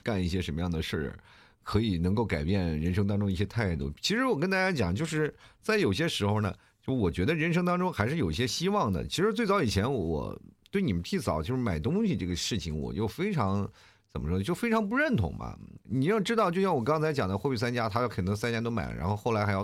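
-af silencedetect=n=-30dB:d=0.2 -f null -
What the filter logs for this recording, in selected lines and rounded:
silence_start: 1.11
silence_end: 1.68 | silence_duration: 0.56
silence_start: 5.29
silence_end: 5.69 | silence_duration: 0.40
silence_start: 6.52
silence_end: 6.88 | silence_duration: 0.37
silence_start: 10.34
silence_end: 10.75 | silence_duration: 0.41
silence_start: 13.66
silence_end: 14.16 | silence_duration: 0.50
silence_start: 15.50
silence_end: 15.92 | silence_duration: 0.42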